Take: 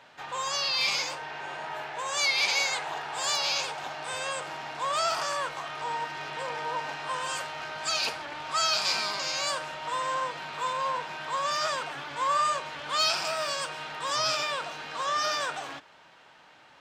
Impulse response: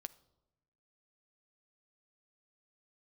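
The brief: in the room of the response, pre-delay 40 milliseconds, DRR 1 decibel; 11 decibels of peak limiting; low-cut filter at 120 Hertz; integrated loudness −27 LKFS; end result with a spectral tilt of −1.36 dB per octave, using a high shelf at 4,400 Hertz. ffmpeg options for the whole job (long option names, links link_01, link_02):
-filter_complex "[0:a]highpass=120,highshelf=frequency=4400:gain=-6,alimiter=level_in=3dB:limit=-24dB:level=0:latency=1,volume=-3dB,asplit=2[link_01][link_02];[1:a]atrim=start_sample=2205,adelay=40[link_03];[link_02][link_03]afir=irnorm=-1:irlink=0,volume=3.5dB[link_04];[link_01][link_04]amix=inputs=2:normalize=0,volume=6dB"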